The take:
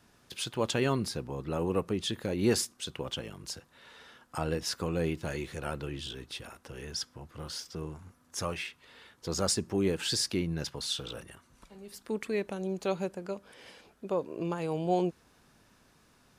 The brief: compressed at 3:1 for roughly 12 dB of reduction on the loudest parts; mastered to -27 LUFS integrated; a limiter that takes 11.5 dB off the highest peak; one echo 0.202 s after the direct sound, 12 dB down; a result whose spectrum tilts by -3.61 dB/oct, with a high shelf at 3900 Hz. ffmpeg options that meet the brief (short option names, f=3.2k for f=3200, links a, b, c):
-af "highshelf=f=3.9k:g=8.5,acompressor=threshold=-37dB:ratio=3,alimiter=level_in=8.5dB:limit=-24dB:level=0:latency=1,volume=-8.5dB,aecho=1:1:202:0.251,volume=16.5dB"